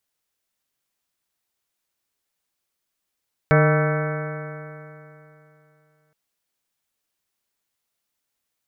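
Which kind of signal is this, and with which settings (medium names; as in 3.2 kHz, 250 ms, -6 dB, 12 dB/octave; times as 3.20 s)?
stretched partials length 2.62 s, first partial 150 Hz, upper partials -12/-5/-5/-14/-18/-14/-10/-9/-14.5/-19.5/-14 dB, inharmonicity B 0.0036, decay 2.95 s, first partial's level -14 dB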